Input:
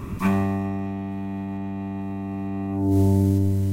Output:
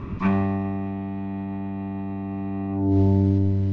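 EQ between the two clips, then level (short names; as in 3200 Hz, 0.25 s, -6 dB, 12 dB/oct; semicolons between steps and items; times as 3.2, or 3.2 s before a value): Bessel low-pass 3200 Hz, order 8; 0.0 dB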